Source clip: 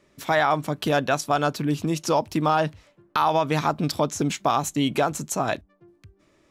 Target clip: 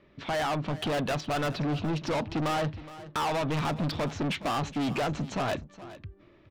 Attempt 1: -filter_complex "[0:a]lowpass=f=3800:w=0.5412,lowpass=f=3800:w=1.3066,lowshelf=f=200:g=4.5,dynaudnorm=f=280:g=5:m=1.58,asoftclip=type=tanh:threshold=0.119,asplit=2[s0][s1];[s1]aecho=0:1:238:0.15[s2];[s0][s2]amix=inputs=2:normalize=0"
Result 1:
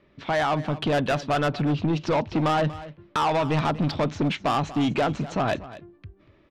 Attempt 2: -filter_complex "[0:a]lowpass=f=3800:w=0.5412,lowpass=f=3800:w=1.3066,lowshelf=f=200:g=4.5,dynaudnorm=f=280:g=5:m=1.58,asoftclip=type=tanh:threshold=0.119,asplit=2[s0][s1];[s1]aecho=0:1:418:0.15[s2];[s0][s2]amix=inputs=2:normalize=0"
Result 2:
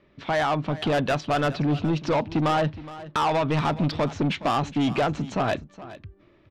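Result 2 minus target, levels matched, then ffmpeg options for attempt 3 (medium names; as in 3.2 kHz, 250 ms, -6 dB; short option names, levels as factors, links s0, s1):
saturation: distortion -5 dB
-filter_complex "[0:a]lowpass=f=3800:w=0.5412,lowpass=f=3800:w=1.3066,lowshelf=f=200:g=4.5,dynaudnorm=f=280:g=5:m=1.58,asoftclip=type=tanh:threshold=0.0473,asplit=2[s0][s1];[s1]aecho=0:1:418:0.15[s2];[s0][s2]amix=inputs=2:normalize=0"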